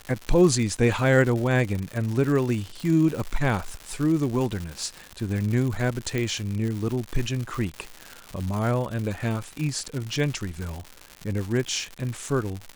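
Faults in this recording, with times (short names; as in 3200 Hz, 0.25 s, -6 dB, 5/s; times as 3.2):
crackle 210/s -29 dBFS
6.18 pop -14 dBFS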